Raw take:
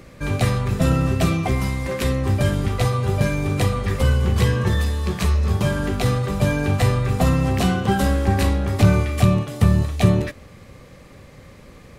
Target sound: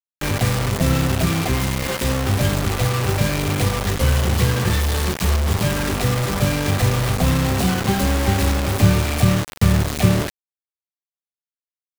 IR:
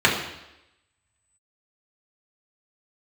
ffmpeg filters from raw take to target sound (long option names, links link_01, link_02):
-filter_complex "[0:a]acrossover=split=420[link_01][link_02];[link_02]acompressor=threshold=-24dB:ratio=6[link_03];[link_01][link_03]amix=inputs=2:normalize=0,acrusher=bits=3:mix=0:aa=0.000001"